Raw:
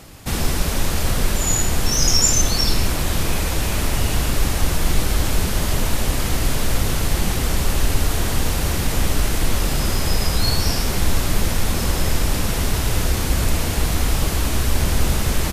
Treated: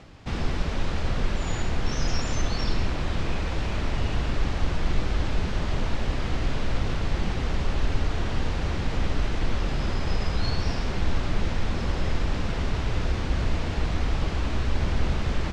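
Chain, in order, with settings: CVSD 64 kbps; reverse; upward compressor, threshold -32 dBFS; reverse; air absorption 170 m; gain -5.5 dB

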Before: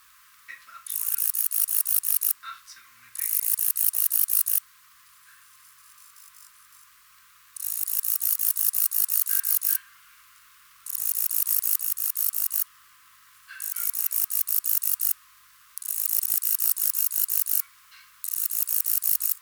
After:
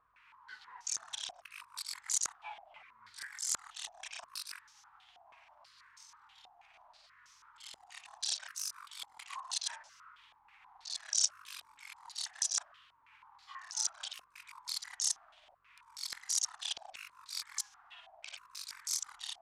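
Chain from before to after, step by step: repeated pitch sweeps -10.5 st, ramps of 1.413 s; stepped low-pass 6.2 Hz 740–5900 Hz; gain -7.5 dB

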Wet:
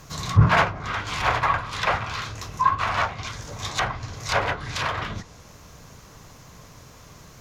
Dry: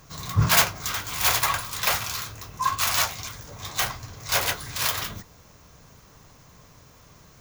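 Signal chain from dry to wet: treble ducked by the level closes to 1700 Hz, closed at -23.5 dBFS; gain +5.5 dB

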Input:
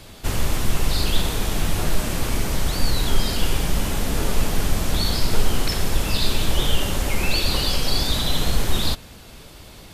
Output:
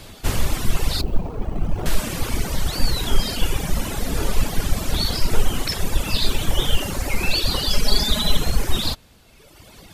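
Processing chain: 1.01–1.86 median filter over 25 samples; reverb removal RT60 1.7 s; 6.29–7.15 companded quantiser 8-bit; 7.7–8.37 comb 4.8 ms, depth 82%; gain +2.5 dB

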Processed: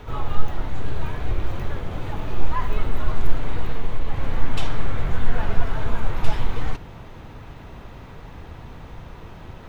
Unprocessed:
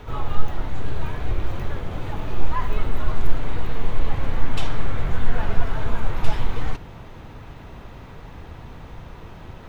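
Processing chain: 3.71–4.3 compressor, threshold -12 dBFS, peak gain reduction 4.5 dB

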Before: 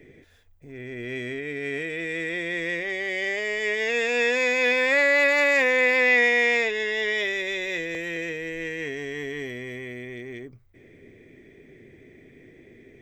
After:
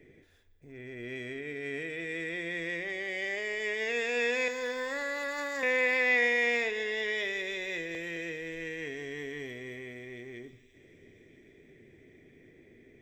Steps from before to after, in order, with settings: 4.48–5.63 fixed phaser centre 650 Hz, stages 6; thin delay 0.987 s, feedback 46%, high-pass 3800 Hz, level -15 dB; plate-style reverb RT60 1.8 s, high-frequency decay 1×, DRR 13 dB; gain -7 dB

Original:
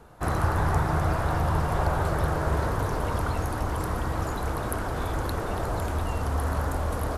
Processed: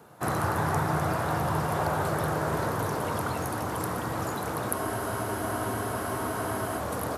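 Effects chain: HPF 110 Hz 24 dB/oct; high shelf 12000 Hz +11.5 dB; spectral freeze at 4.77, 2.03 s

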